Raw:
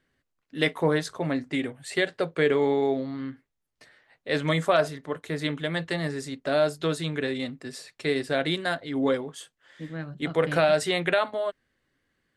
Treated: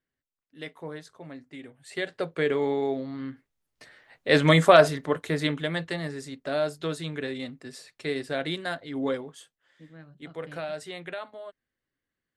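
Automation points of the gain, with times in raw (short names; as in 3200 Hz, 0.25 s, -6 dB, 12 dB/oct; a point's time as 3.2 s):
1.58 s -15 dB
2.16 s -3 dB
3.01 s -3 dB
4.3 s +6.5 dB
5.01 s +6.5 dB
6.08 s -4 dB
9.2 s -4 dB
9.9 s -13 dB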